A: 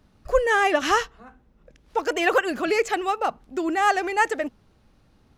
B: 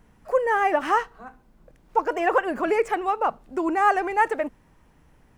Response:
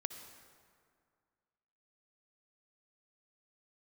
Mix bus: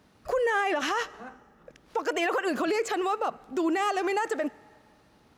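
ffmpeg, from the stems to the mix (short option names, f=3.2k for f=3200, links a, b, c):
-filter_complex "[0:a]volume=2dB,asplit=2[a][b];[b]volume=-20dB[c];[1:a]volume=-7.5dB,asplit=2[d][e];[e]apad=whole_len=236838[f];[a][f]sidechaincompress=threshold=-33dB:ratio=4:attack=24:release=206[g];[2:a]atrim=start_sample=2205[h];[c][h]afir=irnorm=-1:irlink=0[i];[g][d][i]amix=inputs=3:normalize=0,highpass=f=240:p=1,alimiter=limit=-19dB:level=0:latency=1:release=39"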